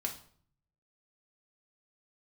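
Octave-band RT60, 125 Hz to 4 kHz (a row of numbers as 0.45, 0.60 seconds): 1.0, 0.70, 0.55, 0.50, 0.45, 0.45 seconds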